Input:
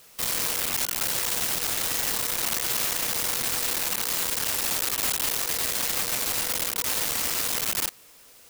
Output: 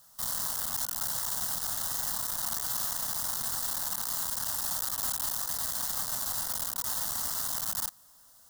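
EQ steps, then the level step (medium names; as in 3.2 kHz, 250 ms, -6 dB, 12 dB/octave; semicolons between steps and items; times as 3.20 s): static phaser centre 1 kHz, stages 4; -4.5 dB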